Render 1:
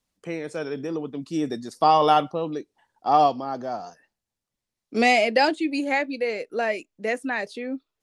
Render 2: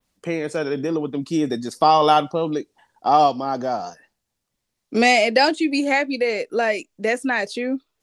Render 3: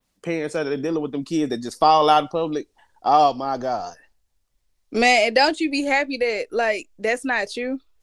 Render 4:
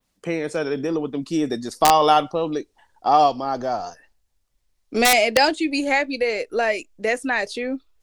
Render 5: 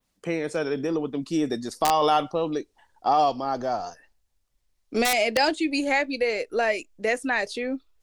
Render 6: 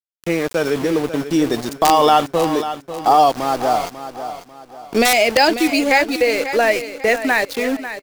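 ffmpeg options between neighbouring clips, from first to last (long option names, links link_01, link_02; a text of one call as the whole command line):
ffmpeg -i in.wav -filter_complex "[0:a]adynamicequalizer=threshold=0.01:dfrequency=6700:dqfactor=0.77:tfrequency=6700:tqfactor=0.77:attack=5:release=100:ratio=0.375:range=2.5:mode=boostabove:tftype=bell,asplit=2[link_01][link_02];[link_02]acompressor=threshold=-27dB:ratio=6,volume=2.5dB[link_03];[link_01][link_03]amix=inputs=2:normalize=0" out.wav
ffmpeg -i in.wav -af "asubboost=boost=10.5:cutoff=54" out.wav
ffmpeg -i in.wav -af "aeval=exprs='(mod(1.68*val(0)+1,2)-1)/1.68':channel_layout=same" out.wav
ffmpeg -i in.wav -af "alimiter=limit=-9.5dB:level=0:latency=1:release=31,volume=-2.5dB" out.wav
ffmpeg -i in.wav -filter_complex "[0:a]aeval=exprs='val(0)*gte(abs(val(0)),0.0237)':channel_layout=same,asplit=2[link_01][link_02];[link_02]aecho=0:1:544|1088|1632|2176:0.266|0.0958|0.0345|0.0124[link_03];[link_01][link_03]amix=inputs=2:normalize=0,volume=8dB" out.wav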